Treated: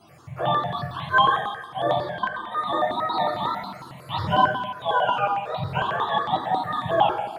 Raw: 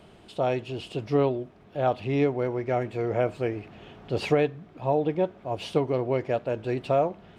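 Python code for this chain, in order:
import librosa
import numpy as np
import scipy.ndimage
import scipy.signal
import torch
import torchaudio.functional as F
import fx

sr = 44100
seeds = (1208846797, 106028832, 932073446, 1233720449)

y = fx.octave_mirror(x, sr, pivot_hz=670.0)
y = fx.level_steps(y, sr, step_db=21, at=(2.02, 2.52))
y = fx.rev_plate(y, sr, seeds[0], rt60_s=1.1, hf_ratio=1.0, predelay_ms=0, drr_db=-2.0)
y = fx.phaser_held(y, sr, hz=11.0, low_hz=510.0, high_hz=1600.0)
y = y * librosa.db_to_amplitude(4.5)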